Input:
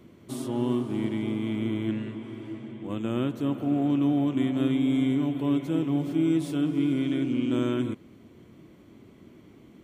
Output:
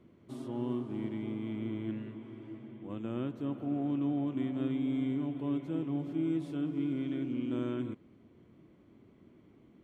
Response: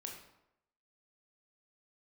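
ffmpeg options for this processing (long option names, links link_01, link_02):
-af "lowpass=frequency=2200:poles=1,volume=-8dB"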